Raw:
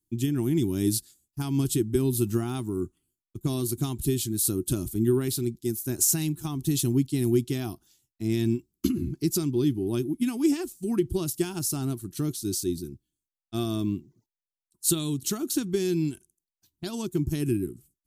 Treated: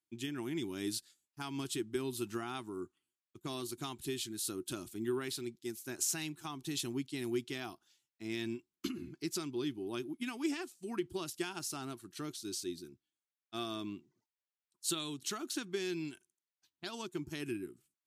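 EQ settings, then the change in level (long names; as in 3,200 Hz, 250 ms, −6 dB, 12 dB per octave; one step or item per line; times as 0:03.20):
resonant band-pass 1,800 Hz, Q 0.72
0.0 dB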